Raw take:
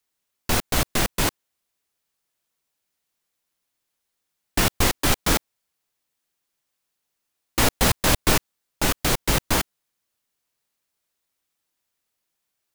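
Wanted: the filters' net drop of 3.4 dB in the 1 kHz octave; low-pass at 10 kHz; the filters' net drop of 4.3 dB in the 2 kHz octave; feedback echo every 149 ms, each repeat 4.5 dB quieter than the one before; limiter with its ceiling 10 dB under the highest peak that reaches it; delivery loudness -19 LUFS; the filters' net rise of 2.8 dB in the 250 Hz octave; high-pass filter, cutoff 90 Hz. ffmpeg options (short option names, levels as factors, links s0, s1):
-af "highpass=90,lowpass=10000,equalizer=f=250:t=o:g=4,equalizer=f=1000:t=o:g=-3.5,equalizer=f=2000:t=o:g=-4.5,alimiter=limit=0.126:level=0:latency=1,aecho=1:1:149|298|447|596|745|894|1043|1192|1341:0.596|0.357|0.214|0.129|0.0772|0.0463|0.0278|0.0167|0.01,volume=3.35"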